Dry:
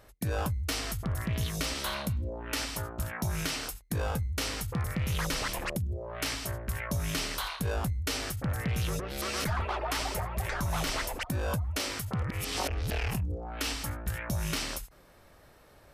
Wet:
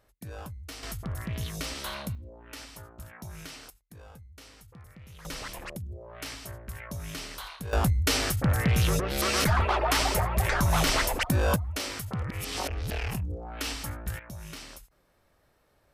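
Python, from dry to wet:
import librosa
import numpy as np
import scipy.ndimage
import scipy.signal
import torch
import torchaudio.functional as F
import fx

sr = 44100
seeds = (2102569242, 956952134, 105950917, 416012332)

y = fx.gain(x, sr, db=fx.steps((0.0, -10.0), (0.83, -2.5), (2.15, -10.5), (3.7, -18.0), (5.25, -6.0), (7.73, 7.0), (11.56, -0.5), (14.19, -10.0)))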